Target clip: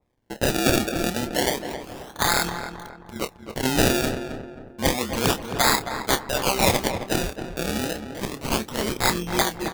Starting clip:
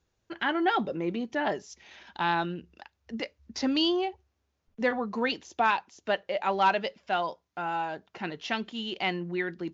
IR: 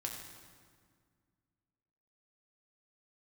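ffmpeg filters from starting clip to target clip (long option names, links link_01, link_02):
-filter_complex "[0:a]equalizer=frequency=125:width_type=o:width=1:gain=4,equalizer=frequency=2000:width_type=o:width=1:gain=8,equalizer=frequency=4000:width_type=o:width=1:gain=8,asettb=1/sr,asplit=3[link_01][link_02][link_03];[link_01]atrim=end=2.494[link_04];[link_02]atrim=start=2.49:end=3.16,asetpts=PTS-STARTPTS,afade=type=in:duration=0.004:curve=qsin,afade=type=out:start_time=0.666:duration=0.004:curve=qsin,acompressor=threshold=-46dB:ratio=2[link_05];[link_03]atrim=start=3.156[link_06];[link_04][link_05]acrossfade=duration=0.004:curve1=hsin:curve2=qsin[link_07];[link_07][link_06]acrossfade=duration=0.004:curve1=qsin:curve2=hsin,tremolo=f=130:d=0.857,acrusher=samples=29:mix=1:aa=0.000001:lfo=1:lforange=29:lforate=0.3,aeval=exprs='(mod(6.31*val(0)+1,2)-1)/6.31':channel_layout=same,asplit=2[link_08][link_09];[link_09]adelay=28,volume=-11dB[link_10];[link_08][link_10]amix=inputs=2:normalize=0,asplit=2[link_11][link_12];[link_12]adelay=267,lowpass=frequency=1900:poles=1,volume=-8dB,asplit=2[link_13][link_14];[link_14]adelay=267,lowpass=frequency=1900:poles=1,volume=0.43,asplit=2[link_15][link_16];[link_16]adelay=267,lowpass=frequency=1900:poles=1,volume=0.43,asplit=2[link_17][link_18];[link_18]adelay=267,lowpass=frequency=1900:poles=1,volume=0.43,asplit=2[link_19][link_20];[link_20]adelay=267,lowpass=frequency=1900:poles=1,volume=0.43[link_21];[link_13][link_15][link_17][link_19][link_21]amix=inputs=5:normalize=0[link_22];[link_11][link_22]amix=inputs=2:normalize=0,adynamicequalizer=threshold=0.00501:dfrequency=2200:dqfactor=0.7:tfrequency=2200:tqfactor=0.7:attack=5:release=100:ratio=0.375:range=3.5:mode=boostabove:tftype=highshelf,volume=5dB"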